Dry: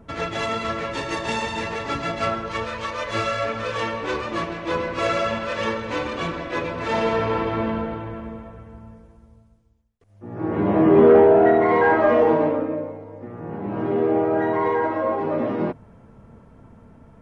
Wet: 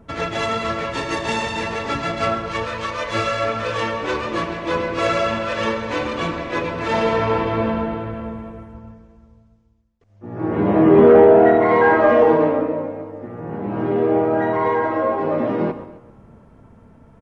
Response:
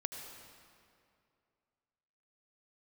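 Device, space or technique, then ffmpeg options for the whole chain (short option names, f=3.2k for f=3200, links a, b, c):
keyed gated reverb: -filter_complex "[0:a]asplit=3[a][b][c];[1:a]atrim=start_sample=2205[d];[b][d]afir=irnorm=-1:irlink=0[e];[c]apad=whole_len=759019[f];[e][f]sidechaingate=range=-11dB:threshold=-40dB:ratio=16:detection=peak,volume=-4dB[g];[a][g]amix=inputs=2:normalize=0,asettb=1/sr,asplit=3[h][i][j];[h]atrim=end=8.734[k];[i]atrim=start=8.73:end=10.39,asetpts=PTS-STARTPTS,afade=t=in:d=0.004:c=qsin,afade=t=out:st=1.656:d=0.004:c=qsin,lowpass=f=7k:w=0.5412,lowpass=f=7k:w=1.3066[l];[j]atrim=start=10.386[m];[k][l]acrossfade=d=0.004:c1=hsin:c2=qsin[n];[n][m]acrossfade=d=0.004:c1=qsin:c2=hsin,aecho=1:1:262:0.0944,volume=-1dB"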